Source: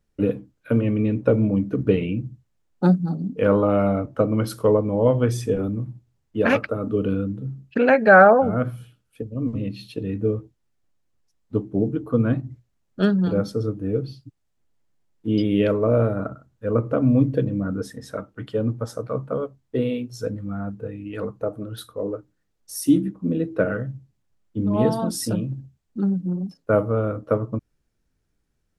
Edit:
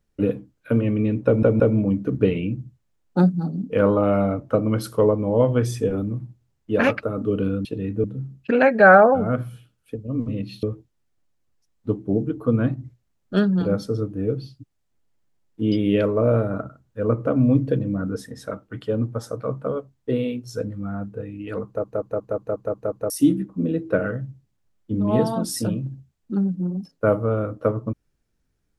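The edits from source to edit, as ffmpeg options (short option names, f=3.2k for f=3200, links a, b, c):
-filter_complex "[0:a]asplit=14[a][b][c][d][e][f][g][h][i][j][k][l][m][n];[a]atrim=end=1.432[o];[b]atrim=start=1.258:end=1.432[p];[c]atrim=start=1.258:end=7.312[q];[d]atrim=start=9.898:end=10.292[r];[e]atrim=start=7.308:end=9.902[s];[f]atrim=start=10.288:end=21.502[t];[g]atrim=start=21.318:end=21.502[u];[h]atrim=start=21.318:end=21.502[v];[i]atrim=start=21.318:end=21.502[w];[j]atrim=start=21.318:end=21.502[x];[k]atrim=start=21.318:end=21.502[y];[l]atrim=start=21.318:end=21.502[z];[m]atrim=start=21.318:end=21.502[aa];[n]atrim=start=22.758[ab];[o][p]acrossfade=d=0.004:c1=hsin:c2=hsin[ac];[ac][q]acrossfade=d=0.004:c1=hsin:c2=hsin[ad];[ad][r]acrossfade=d=0.004:c1=hsin:c2=hsin[ae];[ae][s]acrossfade=d=0.004:c1=hsin:c2=hsin[af];[af][t]acrossfade=d=0.004:c1=hsin:c2=hsin[ag];[ag][u]acrossfade=d=0.004:c1=hsin:c2=hsin[ah];[ah][v]acrossfade=d=0.004:c1=hsin:c2=hsin[ai];[ai][w]acrossfade=d=0.004:c1=hsin:c2=hsin[aj];[aj][x]acrossfade=d=0.004:c1=hsin:c2=hsin[ak];[ak][y]acrossfade=d=0.004:c1=hsin:c2=hsin[al];[al][z]acrossfade=d=0.004:c1=hsin:c2=hsin[am];[am][aa]acrossfade=d=0.004:c1=hsin:c2=hsin[an];[an][ab]acrossfade=d=0.004:c1=hsin:c2=hsin"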